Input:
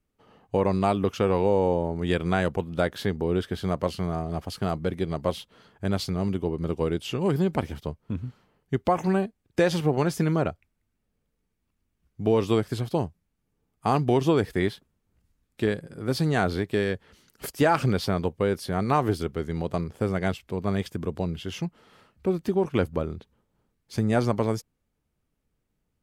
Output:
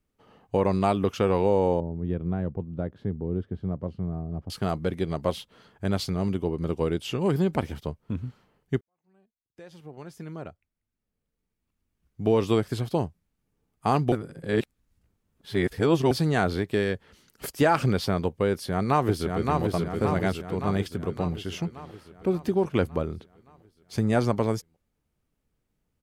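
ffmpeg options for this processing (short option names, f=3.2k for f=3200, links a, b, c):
-filter_complex "[0:a]asettb=1/sr,asplit=3[a][b][c];[a]atrim=end=1.804[d];[b]atrim=start=1.8:end=4.5,asetpts=PTS-STARTPTS,afade=t=in:d=0.004:c=qsin,afade=t=out:st=2.696:d=0.004:c=qsin,bandpass=f=110:t=q:w=0.58[e];[c]atrim=start=4.496[f];[d][e]acrossfade=d=0.004:c1=hsin:c2=qsin[g];[g][f]acrossfade=d=0.004:c1=qsin:c2=hsin,asplit=2[h][i];[i]afade=t=in:st=18.51:d=0.01,afade=t=out:st=19.63:d=0.01,aecho=0:1:570|1140|1710|2280|2850|3420|3990|4560|5130:0.668344|0.401006|0.240604|0.144362|0.0866174|0.0519704|0.0311823|0.0187094|0.0112256[j];[h][j]amix=inputs=2:normalize=0,asplit=4[k][l][m][n];[k]atrim=end=8.81,asetpts=PTS-STARTPTS,afade=t=out:st=8.806:d=0.004:c=hsin[o];[l]atrim=start=8.81:end=14.122,asetpts=PTS-STARTPTS,afade=t=in:d=3.47:c=qua[p];[m]atrim=start=14.118:end=16.112,asetpts=PTS-STARTPTS,areverse[q];[n]atrim=start=16.108[r];[o][p]concat=n=2:v=0:a=1[s];[s][q]acrossfade=d=0.004:c1=hsin:c2=hsin[t];[t][r]acrossfade=d=0.004:c1=hsin:c2=hsin"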